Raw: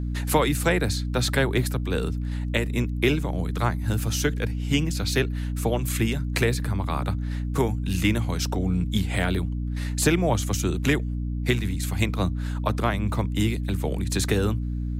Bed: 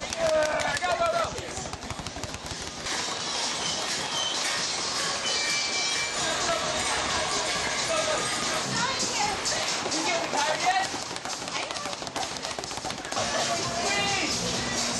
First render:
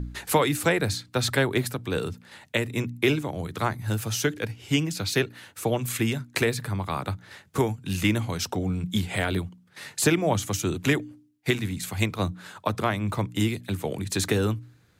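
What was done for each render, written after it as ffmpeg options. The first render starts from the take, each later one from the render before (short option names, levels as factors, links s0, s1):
-af "bandreject=f=60:t=h:w=4,bandreject=f=120:t=h:w=4,bandreject=f=180:t=h:w=4,bandreject=f=240:t=h:w=4,bandreject=f=300:t=h:w=4"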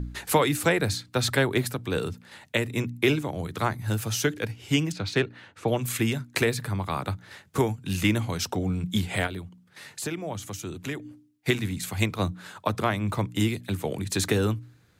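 -filter_complex "[0:a]asettb=1/sr,asplit=3[s0][s1][s2];[s0]atrim=end=4.924[s3];[s1]atrim=start=4.92:end=5.68,asetpts=PTS-STARTPTS,afade=t=in:d=0.004:c=qsin,afade=t=out:st=0.756:d=0.004:c=qsin,adynamicsmooth=sensitivity=1:basefreq=3800[s4];[s2]atrim=start=5.676[s5];[s3][s4]acrossfade=d=0.004:c1=hsin:c2=qsin[s6];[s6][s5]acrossfade=d=0.004:c1=qsin:c2=hsin,asplit=3[s7][s8][s9];[s7]afade=t=out:st=9.26:d=0.02[s10];[s8]acompressor=threshold=0.00447:ratio=1.5:attack=3.2:release=140:knee=1:detection=peak,afade=t=in:st=9.26:d=0.02,afade=t=out:st=11.04:d=0.02[s11];[s9]afade=t=in:st=11.04:d=0.02[s12];[s10][s11][s12]amix=inputs=3:normalize=0"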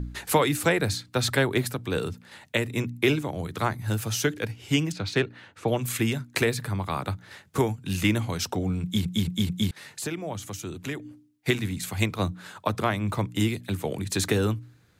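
-filter_complex "[0:a]asplit=5[s0][s1][s2][s3][s4];[s0]atrim=end=9.052[s5];[s1]atrim=start=8.828:end=9.052[s6];[s2]atrim=start=8.828:end=9.052[s7];[s3]atrim=start=8.828:end=9.052[s8];[s4]atrim=start=9.708[s9];[s5][s6]acrossfade=d=0.004:c1=hsin:c2=hsin[s10];[s10][s7]acrossfade=d=0.004:c1=hsin:c2=hsin[s11];[s11][s8]acrossfade=d=0.004:c1=hsin:c2=hsin[s12];[s12][s9]acrossfade=d=0.004:c1=hsin:c2=hsin"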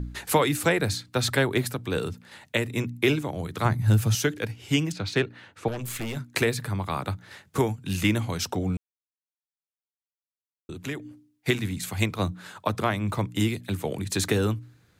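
-filter_complex "[0:a]asettb=1/sr,asplit=3[s0][s1][s2];[s0]atrim=end=3.654[s3];[s1]atrim=start=3.65:end=4.15,asetpts=PTS-STARTPTS,afade=t=in:d=0.004:c=qsin,afade=t=out:st=0.496:d=0.004:c=qsin,equalizer=f=130:w=0.79:g=9.5[s4];[s2]atrim=start=4.146[s5];[s3][s4]acrossfade=d=0.004:c1=hsin:c2=qsin[s6];[s6][s5]acrossfade=d=0.004:c1=qsin:c2=hsin,asettb=1/sr,asplit=3[s7][s8][s9];[s7]atrim=end=5.684[s10];[s8]atrim=start=5.68:end=6.17,asetpts=PTS-STARTPTS,afade=t=in:d=0.004:c=qsin,afade=t=out:st=0.486:d=0.004:c=qsin,aeval=exprs='(tanh(28.2*val(0)+0.45)-tanh(0.45))/28.2':c=same[s11];[s9]atrim=start=6.166[s12];[s10][s11]acrossfade=d=0.004:c1=hsin:c2=qsin[s13];[s13][s12]acrossfade=d=0.004:c1=qsin:c2=hsin,asplit=3[s14][s15][s16];[s14]atrim=end=8.77,asetpts=PTS-STARTPTS,afade=t=out:st=8.766:d=0.004:c=hsin[s17];[s15]atrim=start=8.77:end=10.69,asetpts=PTS-STARTPTS,volume=0[s18];[s16]atrim=start=10.69,asetpts=PTS-STARTPTS,afade=t=in:d=0.004:c=hsin[s19];[s17][s18][s19]concat=n=3:v=0:a=1"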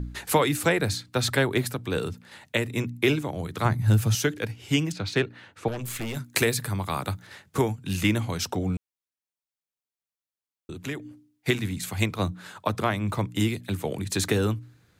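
-filter_complex "[0:a]asettb=1/sr,asplit=3[s0][s1][s2];[s0]atrim=end=6.144[s3];[s1]atrim=start=6.14:end=7.27,asetpts=PTS-STARTPTS,afade=t=in:d=0.004:c=qsin,afade=t=out:st=1.126:d=0.004:c=qsin,highshelf=f=5700:g=9.5[s4];[s2]atrim=start=7.266[s5];[s3][s4]acrossfade=d=0.004:c1=hsin:c2=qsin[s6];[s6][s5]acrossfade=d=0.004:c1=qsin:c2=hsin"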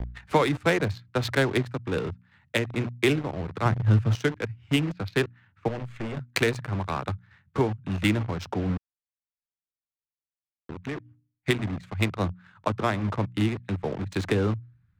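-filter_complex "[0:a]acrossover=split=180|1200|3900[s0][s1][s2][s3];[s1]acrusher=bits=5:mix=0:aa=0.000001[s4];[s0][s4][s2][s3]amix=inputs=4:normalize=0,adynamicsmooth=sensitivity=2.5:basefreq=1000"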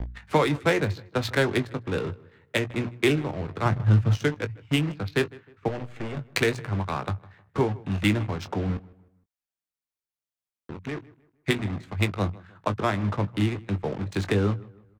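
-filter_complex "[0:a]asplit=2[s0][s1];[s1]adelay=20,volume=0.299[s2];[s0][s2]amix=inputs=2:normalize=0,asplit=2[s3][s4];[s4]adelay=155,lowpass=f=2600:p=1,volume=0.0841,asplit=2[s5][s6];[s6]adelay=155,lowpass=f=2600:p=1,volume=0.39,asplit=2[s7][s8];[s8]adelay=155,lowpass=f=2600:p=1,volume=0.39[s9];[s3][s5][s7][s9]amix=inputs=4:normalize=0"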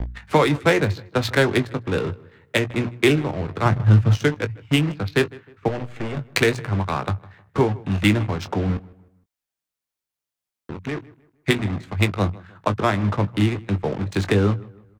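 -af "volume=1.78,alimiter=limit=0.708:level=0:latency=1"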